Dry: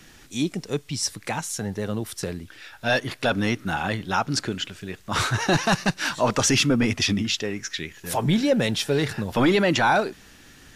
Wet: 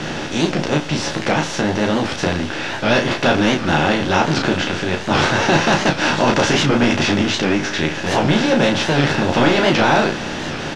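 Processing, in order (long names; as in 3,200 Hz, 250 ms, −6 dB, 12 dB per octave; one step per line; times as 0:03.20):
compressor on every frequency bin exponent 0.4
low-pass filter 4,300 Hz 12 dB per octave
on a send: ambience of single reflections 13 ms −5 dB, 33 ms −4 dB
on the sum: wow of a warped record 78 rpm, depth 160 cents
level −2 dB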